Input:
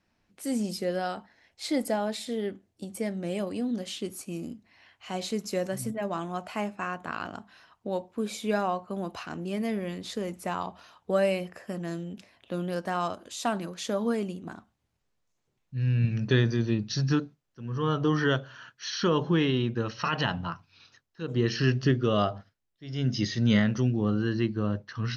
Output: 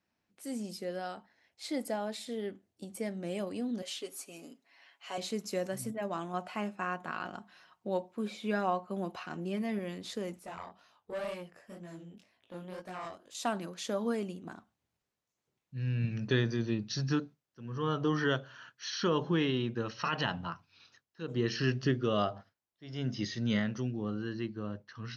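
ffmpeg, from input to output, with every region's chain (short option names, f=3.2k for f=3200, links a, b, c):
-filter_complex "[0:a]asettb=1/sr,asplit=3[a][b][c];[a]atrim=end=3.824[d];[b]atrim=start=3.82:end=5.18,asetpts=PTS-STARTPTS,afade=t=in:d=0.004:c=qsin,afade=t=out:st=1.356:d=0.004:c=qsin,highpass=420,aecho=1:1:7.2:0.66,atrim=end_sample=59976[e];[c]atrim=start=5.176[f];[d][e]acrossfade=d=0.004:c1=hsin:c2=qsin[g];[g][f]acrossfade=d=0.004:c1=qsin:c2=hsin,asettb=1/sr,asplit=3[h][i][j];[h]atrim=end=6.334[k];[i]atrim=start=6.33:end=9.79,asetpts=PTS-STARTPTS,afade=t=in:d=0.004:c=qsin,afade=t=out:st=3.456:d=0.004:c=qsin,acrossover=split=4300[l][m];[m]acompressor=threshold=-57dB:ratio=4:attack=1:release=60[n];[l][n]amix=inputs=2:normalize=0,aecho=1:1:5.5:0.4,atrim=end_sample=152586[o];[j]atrim=start=9.786[p];[k][o]acrossfade=d=0.004:c1=hsin:c2=qsin[q];[q][p]acrossfade=d=0.004:c1=qsin:c2=hsin,asettb=1/sr,asplit=3[r][s][t];[r]atrim=end=10.394[u];[s]atrim=start=10.39:end=13.35,asetpts=PTS-STARTPTS,afade=t=in:d=0.004:c=qsin,afade=t=out:st=2.956:d=0.004:c=qsin,flanger=delay=16.5:depth=7.9:speed=2,aeval=exprs='(tanh(25.1*val(0)+0.7)-tanh(0.7))/25.1':c=same[v];[t]atrim=start=13.346[w];[u][v]acrossfade=d=0.004:c1=hsin:c2=qsin[x];[x][w]acrossfade=d=0.004:c1=qsin:c2=hsin,asettb=1/sr,asplit=3[y][z][aa];[y]atrim=end=22.364[ab];[z]atrim=start=22.36:end=23.22,asetpts=PTS-STARTPTS,afade=t=in:d=0.004:c=qsin,afade=t=out:st=0.856:d=0.004:c=qsin,acrossover=split=3600[ac][ad];[ad]acompressor=threshold=-43dB:ratio=4:attack=1:release=60[ae];[ac][ae]amix=inputs=2:normalize=0,equalizer=f=870:t=o:w=1.3:g=5.5[af];[aa]atrim=start=23.216[ag];[ab][af]acrossfade=d=0.004:c1=hsin:c2=qsin[ah];[ah][ag]acrossfade=d=0.004:c1=qsin:c2=hsin,highpass=f=130:p=1,dynaudnorm=f=400:g=11:m=4dB,volume=-8dB"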